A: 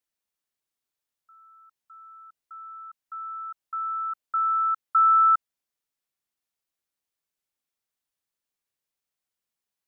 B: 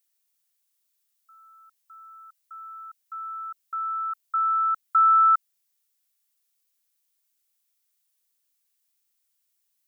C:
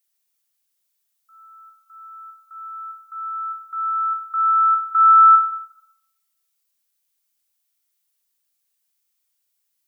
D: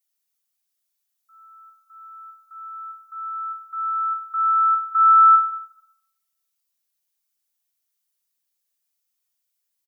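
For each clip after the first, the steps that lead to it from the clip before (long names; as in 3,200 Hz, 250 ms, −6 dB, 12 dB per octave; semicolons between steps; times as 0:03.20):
spectral tilt +4 dB per octave; level −1 dB
rectangular room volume 360 cubic metres, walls mixed, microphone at 0.93 metres
comb filter 5.4 ms; level −5.5 dB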